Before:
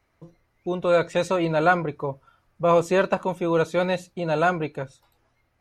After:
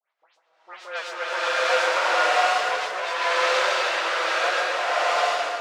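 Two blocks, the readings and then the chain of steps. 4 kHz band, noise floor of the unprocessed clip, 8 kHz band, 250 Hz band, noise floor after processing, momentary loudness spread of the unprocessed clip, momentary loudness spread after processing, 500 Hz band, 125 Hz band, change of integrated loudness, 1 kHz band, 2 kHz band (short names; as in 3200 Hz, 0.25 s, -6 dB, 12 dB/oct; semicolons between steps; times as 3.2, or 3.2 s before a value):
+12.5 dB, -70 dBFS, +9.0 dB, -19.0 dB, -68 dBFS, 12 LU, 8 LU, -3.5 dB, under -35 dB, +1.5 dB, +4.0 dB, +7.5 dB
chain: half-waves squared off; HPF 760 Hz 24 dB/oct; dispersion highs, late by 0.139 s, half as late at 2800 Hz; rotary speaker horn 8 Hz; air absorption 130 m; tape echo 0.138 s, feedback 77%, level -3.5 dB, low-pass 1200 Hz; bloom reverb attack 0.74 s, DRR -11.5 dB; gain -6 dB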